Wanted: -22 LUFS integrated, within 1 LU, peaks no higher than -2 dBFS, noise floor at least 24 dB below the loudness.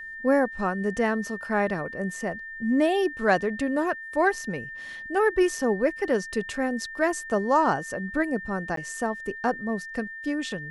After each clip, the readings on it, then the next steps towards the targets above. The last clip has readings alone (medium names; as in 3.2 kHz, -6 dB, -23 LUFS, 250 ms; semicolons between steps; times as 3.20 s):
dropouts 1; longest dropout 13 ms; steady tone 1.8 kHz; tone level -36 dBFS; loudness -26.5 LUFS; peak level -8.5 dBFS; loudness target -22.0 LUFS
-> interpolate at 8.76 s, 13 ms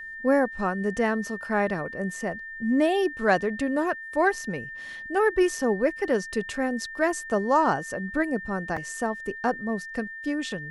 dropouts 0; steady tone 1.8 kHz; tone level -36 dBFS
-> band-stop 1.8 kHz, Q 30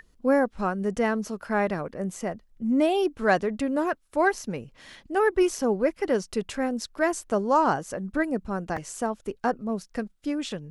steady tone not found; loudness -26.5 LUFS; peak level -8.5 dBFS; loudness target -22.0 LUFS
-> trim +4.5 dB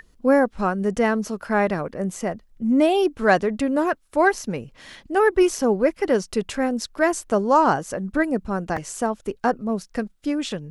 loudness -22.0 LUFS; peak level -4.0 dBFS; noise floor -56 dBFS